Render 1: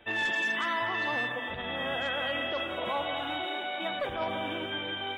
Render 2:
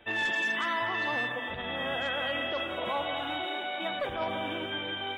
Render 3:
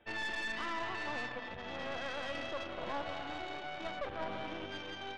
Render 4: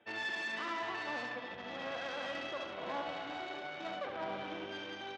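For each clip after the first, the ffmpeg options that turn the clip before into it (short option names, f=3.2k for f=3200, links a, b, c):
-af anull
-af "aemphasis=mode=reproduction:type=75kf,aeval=exprs='0.075*(cos(1*acos(clip(val(0)/0.075,-1,1)))-cos(1*PI/2))+0.0168*(cos(4*acos(clip(val(0)/0.075,-1,1)))-cos(4*PI/2))':c=same,volume=-7.5dB"
-af "highpass=160,lowpass=7.6k,aecho=1:1:71:0.501,volume=-1dB"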